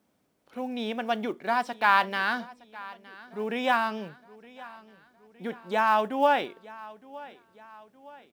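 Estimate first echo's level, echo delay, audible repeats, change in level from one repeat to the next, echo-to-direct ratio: -20.0 dB, 0.915 s, 3, -6.0 dB, -19.0 dB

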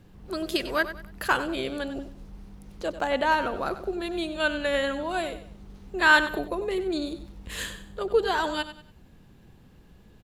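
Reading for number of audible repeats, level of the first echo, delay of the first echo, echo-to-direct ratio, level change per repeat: 3, -12.5 dB, 95 ms, -12.0 dB, -9.5 dB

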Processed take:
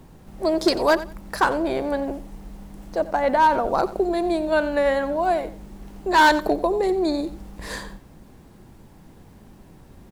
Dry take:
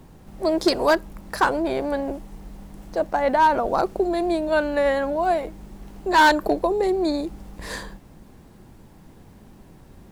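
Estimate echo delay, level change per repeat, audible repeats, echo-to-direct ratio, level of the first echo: 90 ms, -14.0 dB, 2, -15.5 dB, -15.5 dB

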